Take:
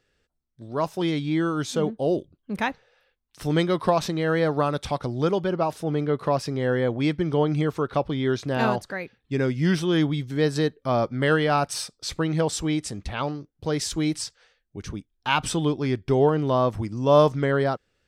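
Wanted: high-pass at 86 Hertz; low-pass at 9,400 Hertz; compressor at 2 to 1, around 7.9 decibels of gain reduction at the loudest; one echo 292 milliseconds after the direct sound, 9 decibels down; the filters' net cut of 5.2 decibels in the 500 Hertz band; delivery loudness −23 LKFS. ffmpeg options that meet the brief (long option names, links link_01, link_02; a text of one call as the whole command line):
ffmpeg -i in.wav -af "highpass=86,lowpass=9400,equalizer=frequency=500:width_type=o:gain=-6.5,acompressor=threshold=-30dB:ratio=2,aecho=1:1:292:0.355,volume=8.5dB" out.wav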